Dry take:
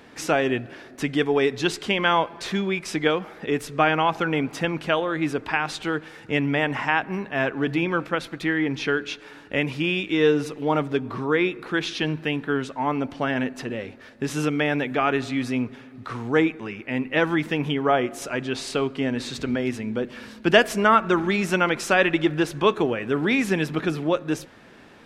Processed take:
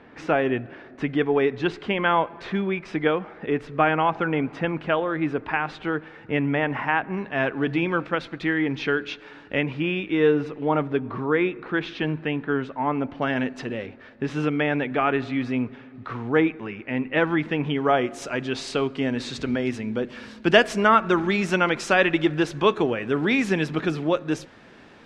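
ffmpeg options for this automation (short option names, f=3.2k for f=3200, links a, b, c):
-af "asetnsamples=n=441:p=0,asendcmd='7.17 lowpass f 4000;9.61 lowpass f 2400;13.22 lowpass f 5500;13.86 lowpass f 3000;17.75 lowpass f 7100',lowpass=2.3k"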